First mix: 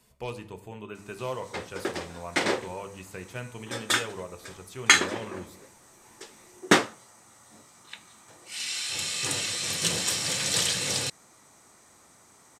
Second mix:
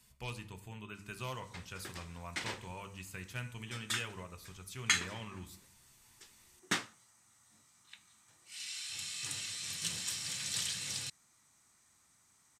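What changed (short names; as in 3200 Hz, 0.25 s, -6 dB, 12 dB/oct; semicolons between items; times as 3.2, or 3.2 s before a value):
background -10.0 dB; master: add bell 490 Hz -14 dB 2 oct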